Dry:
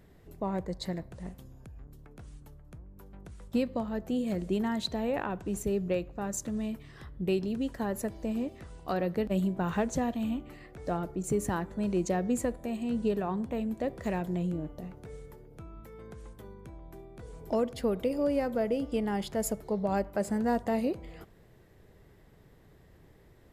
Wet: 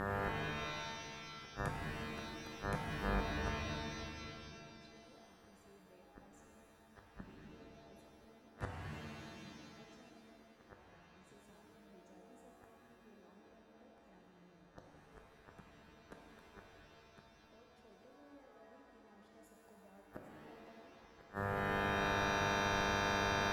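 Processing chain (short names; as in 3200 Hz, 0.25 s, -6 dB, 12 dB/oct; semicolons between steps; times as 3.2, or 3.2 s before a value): in parallel at +3 dB: compressor 6:1, threshold -41 dBFS, peak gain reduction 16 dB; on the sum: buzz 100 Hz, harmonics 18, -41 dBFS -1 dB/oct; flipped gate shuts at -26 dBFS, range -39 dB; shimmer reverb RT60 2.3 s, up +7 st, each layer -2 dB, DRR 0 dB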